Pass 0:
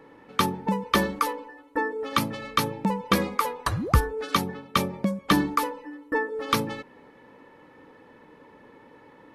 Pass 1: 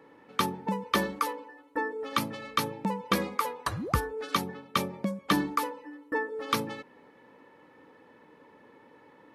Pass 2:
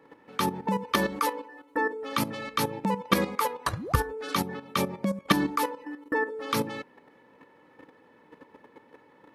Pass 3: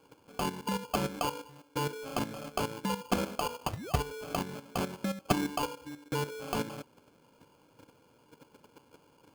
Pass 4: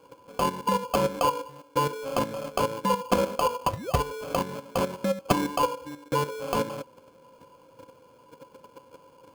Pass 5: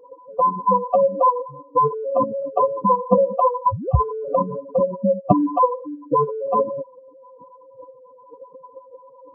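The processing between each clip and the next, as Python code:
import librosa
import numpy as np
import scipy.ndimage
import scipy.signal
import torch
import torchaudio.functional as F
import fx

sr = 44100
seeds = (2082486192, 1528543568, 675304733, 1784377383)

y1 = fx.highpass(x, sr, hz=130.0, slope=6)
y1 = y1 * librosa.db_to_amplitude(-4.0)
y2 = fx.level_steps(y1, sr, step_db=11)
y2 = y2 * librosa.db_to_amplitude(8.0)
y3 = fx.sample_hold(y2, sr, seeds[0], rate_hz=1900.0, jitter_pct=0)
y3 = y3 * librosa.db_to_amplitude(-5.5)
y4 = fx.small_body(y3, sr, hz=(530.0, 1000.0), ring_ms=85, db=15)
y4 = y4 * librosa.db_to_amplitude(3.5)
y5 = fx.spec_expand(y4, sr, power=3.6)
y5 = y5 * librosa.db_to_amplitude(8.5)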